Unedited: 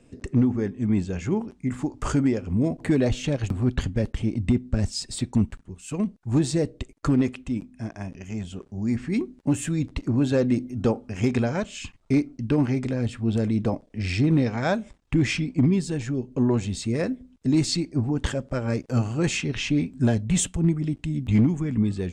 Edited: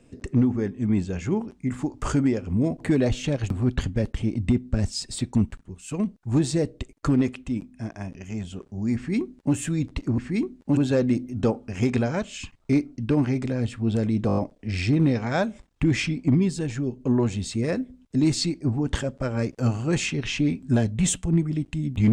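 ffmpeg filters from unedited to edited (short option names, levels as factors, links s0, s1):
-filter_complex "[0:a]asplit=8[s0][s1][s2][s3][s4][s5][s6][s7];[s0]atrim=end=10.182[s8];[s1]atrim=start=8.958:end=9.552[s9];[s2]atrim=start=10.178:end=13.702[s10];[s3]atrim=start=13.678:end=13.702[s11];[s4]atrim=start=13.678:end=13.702[s12];[s5]atrim=start=13.678:end=13.702[s13];[s6]atrim=start=13.678:end=13.702[s14];[s7]atrim=start=13.678[s15];[s8][s9]acrossfade=d=0.004:c1=hsin:c2=hsin[s16];[s16][s10]acrossfade=d=0.004:c1=hsin:c2=hsin[s17];[s17][s11]acrossfade=d=0.004:c1=hsin:c2=hsin[s18];[s18][s12]acrossfade=d=0.004:c1=hsin:c2=hsin[s19];[s19][s13]acrossfade=d=0.004:c1=hsin:c2=hsin[s20];[s20][s14]acrossfade=d=0.004:c1=hsin:c2=hsin[s21];[s21][s15]acrossfade=d=0.004:c1=hsin:c2=hsin"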